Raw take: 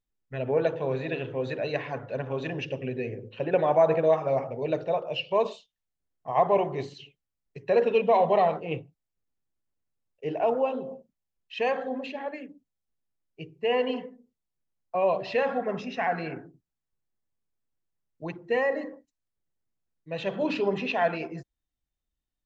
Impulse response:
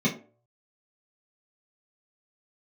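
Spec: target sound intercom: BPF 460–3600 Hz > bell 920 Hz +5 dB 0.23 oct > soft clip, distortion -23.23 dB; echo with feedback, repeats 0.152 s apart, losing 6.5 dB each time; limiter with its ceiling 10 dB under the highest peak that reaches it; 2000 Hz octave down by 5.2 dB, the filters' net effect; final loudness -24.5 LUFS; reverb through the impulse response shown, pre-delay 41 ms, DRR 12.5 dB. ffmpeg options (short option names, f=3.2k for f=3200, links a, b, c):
-filter_complex "[0:a]equalizer=f=2k:t=o:g=-6,alimiter=limit=-21.5dB:level=0:latency=1,aecho=1:1:152|304|456|608|760|912:0.473|0.222|0.105|0.0491|0.0231|0.0109,asplit=2[a][b];[1:a]atrim=start_sample=2205,adelay=41[c];[b][c]afir=irnorm=-1:irlink=0,volume=-24dB[d];[a][d]amix=inputs=2:normalize=0,highpass=460,lowpass=3.6k,equalizer=f=920:t=o:w=0.23:g=5,asoftclip=threshold=-20.5dB,volume=9.5dB"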